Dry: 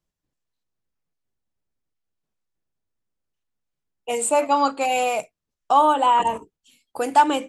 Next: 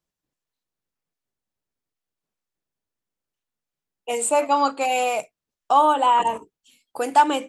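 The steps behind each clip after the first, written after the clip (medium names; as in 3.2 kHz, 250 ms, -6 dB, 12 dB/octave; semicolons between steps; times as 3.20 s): bass shelf 130 Hz -9 dB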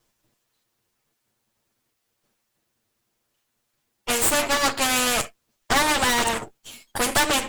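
comb filter that takes the minimum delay 8.7 ms; spectrum-flattening compressor 2:1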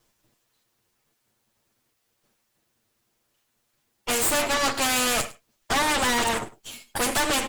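saturation -20.5 dBFS, distortion -10 dB; delay 103 ms -19.5 dB; trim +2 dB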